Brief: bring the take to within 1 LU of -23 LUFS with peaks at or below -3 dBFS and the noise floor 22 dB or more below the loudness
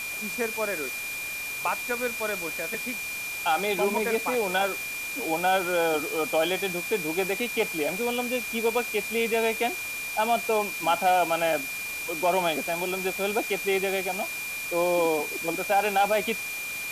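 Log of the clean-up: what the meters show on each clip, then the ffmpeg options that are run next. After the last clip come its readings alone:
steady tone 2400 Hz; tone level -32 dBFS; noise floor -34 dBFS; noise floor target -49 dBFS; loudness -26.5 LUFS; peak -13.0 dBFS; loudness target -23.0 LUFS
-> -af "bandreject=f=2.4k:w=30"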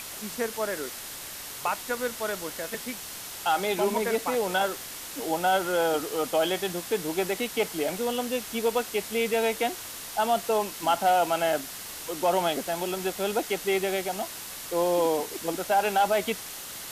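steady tone none; noise floor -40 dBFS; noise floor target -50 dBFS
-> -af "afftdn=nr=10:nf=-40"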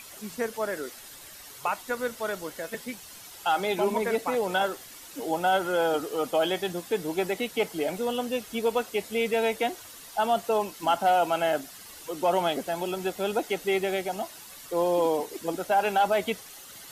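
noise floor -46 dBFS; noise floor target -50 dBFS
-> -af "afftdn=nr=6:nf=-46"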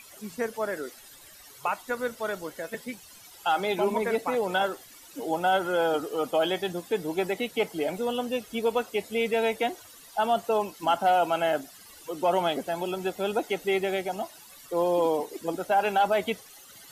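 noise floor -50 dBFS; loudness -28.0 LUFS; peak -14.5 dBFS; loudness target -23.0 LUFS
-> -af "volume=5dB"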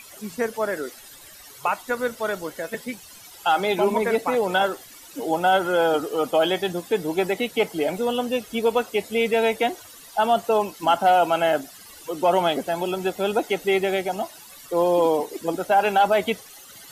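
loudness -23.0 LUFS; peak -9.5 dBFS; noise floor -45 dBFS

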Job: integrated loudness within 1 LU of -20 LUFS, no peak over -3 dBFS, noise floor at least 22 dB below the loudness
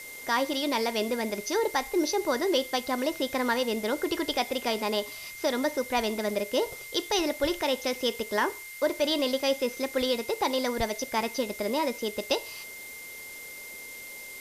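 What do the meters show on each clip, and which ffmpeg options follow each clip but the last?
steady tone 2100 Hz; tone level -42 dBFS; noise floor -43 dBFS; noise floor target -51 dBFS; loudness -28.5 LUFS; peak -14.0 dBFS; loudness target -20.0 LUFS
-> -af "bandreject=f=2.1k:w=30"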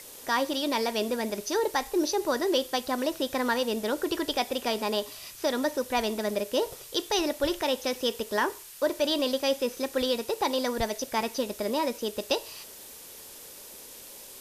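steady tone none; noise floor -46 dBFS; noise floor target -51 dBFS
-> -af "afftdn=nr=6:nf=-46"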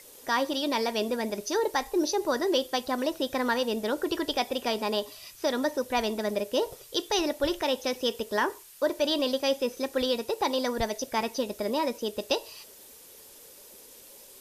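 noise floor -51 dBFS; loudness -29.0 LUFS; peak -14.5 dBFS; loudness target -20.0 LUFS
-> -af "volume=9dB"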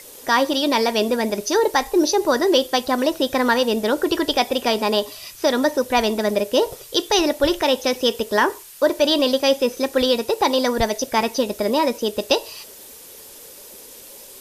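loudness -20.0 LUFS; peak -5.5 dBFS; noise floor -42 dBFS

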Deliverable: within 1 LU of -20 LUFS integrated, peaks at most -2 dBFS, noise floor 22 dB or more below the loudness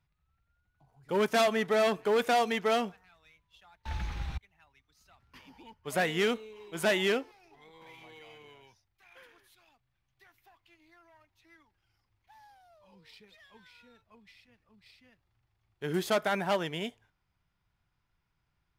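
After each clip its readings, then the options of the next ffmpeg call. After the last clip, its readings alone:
loudness -30.0 LUFS; peak -20.0 dBFS; loudness target -20.0 LUFS
-> -af "volume=10dB"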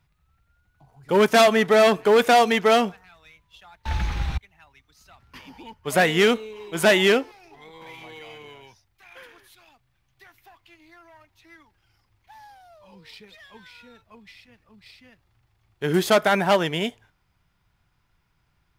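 loudness -20.0 LUFS; peak -10.0 dBFS; noise floor -69 dBFS

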